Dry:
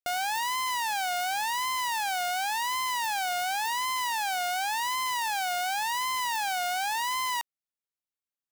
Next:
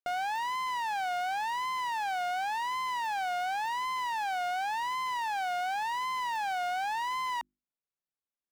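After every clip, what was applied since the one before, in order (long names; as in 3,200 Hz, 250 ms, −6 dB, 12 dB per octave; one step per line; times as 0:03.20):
low-pass filter 1,400 Hz 6 dB per octave
parametric band 81 Hz −14 dB 0.33 octaves
mains-hum notches 50/100/150/200/250/300/350 Hz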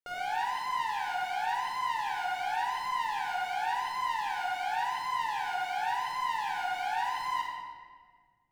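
rectangular room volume 2,500 cubic metres, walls mixed, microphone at 4.5 metres
level −7 dB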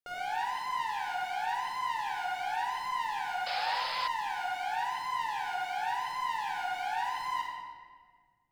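sound drawn into the spectrogram noise, 0:03.46–0:04.08, 470–5,300 Hz −36 dBFS
level −1.5 dB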